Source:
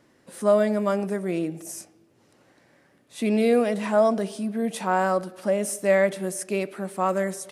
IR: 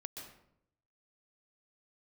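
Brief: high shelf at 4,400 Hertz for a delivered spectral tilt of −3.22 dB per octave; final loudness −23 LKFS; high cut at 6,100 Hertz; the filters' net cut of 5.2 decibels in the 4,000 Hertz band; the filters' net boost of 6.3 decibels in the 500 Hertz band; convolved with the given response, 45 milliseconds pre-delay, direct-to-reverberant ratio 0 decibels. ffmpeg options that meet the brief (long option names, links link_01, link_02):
-filter_complex "[0:a]lowpass=6100,equalizer=frequency=500:width_type=o:gain=8,equalizer=frequency=4000:width_type=o:gain=-3.5,highshelf=frequency=4400:gain=-5,asplit=2[link_01][link_02];[1:a]atrim=start_sample=2205,adelay=45[link_03];[link_02][link_03]afir=irnorm=-1:irlink=0,volume=3dB[link_04];[link_01][link_04]amix=inputs=2:normalize=0,volume=-7dB"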